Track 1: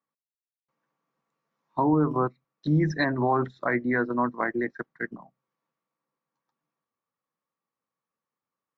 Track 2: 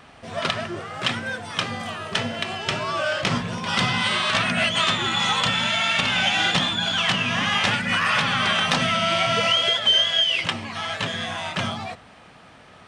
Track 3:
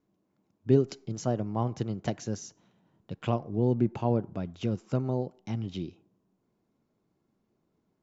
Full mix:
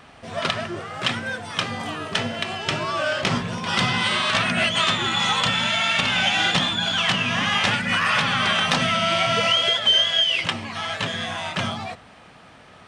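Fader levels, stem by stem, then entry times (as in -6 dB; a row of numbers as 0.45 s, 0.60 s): -15.5 dB, +0.5 dB, mute; 0.00 s, 0.00 s, mute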